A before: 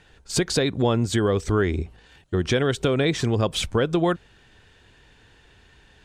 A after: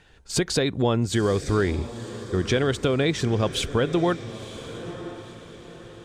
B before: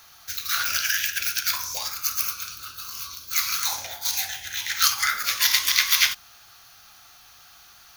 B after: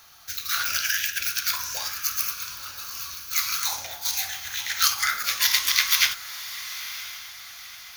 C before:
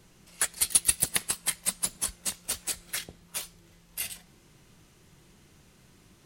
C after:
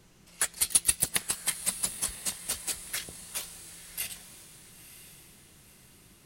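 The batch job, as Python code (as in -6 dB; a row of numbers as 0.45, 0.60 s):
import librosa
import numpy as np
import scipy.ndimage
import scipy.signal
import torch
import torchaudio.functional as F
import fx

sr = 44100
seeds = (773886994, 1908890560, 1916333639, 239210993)

y = fx.echo_diffused(x, sr, ms=984, feedback_pct=42, wet_db=-13)
y = F.gain(torch.from_numpy(y), -1.0).numpy()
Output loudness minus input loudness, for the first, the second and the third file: -1.0, -1.5, -1.0 LU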